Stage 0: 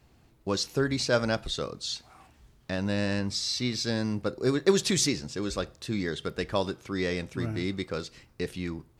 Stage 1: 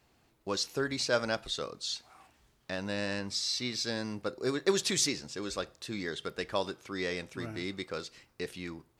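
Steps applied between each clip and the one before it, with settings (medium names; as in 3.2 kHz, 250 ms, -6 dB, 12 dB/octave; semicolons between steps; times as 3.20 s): bass shelf 250 Hz -11 dB; trim -2 dB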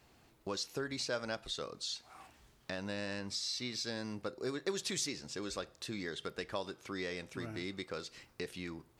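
compression 2:1, threshold -46 dBFS, peak gain reduction 13.5 dB; trim +3 dB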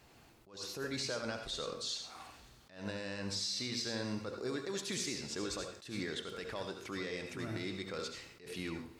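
peak limiter -32.5 dBFS, peak gain reduction 9.5 dB; on a send at -5 dB: reverberation, pre-delay 68 ms; on the sum: attacks held to a fixed rise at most 130 dB/s; trim +3 dB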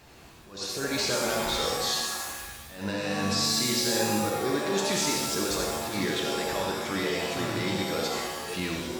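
pitch-shifted reverb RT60 1.1 s, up +7 st, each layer -2 dB, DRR 1.5 dB; trim +8 dB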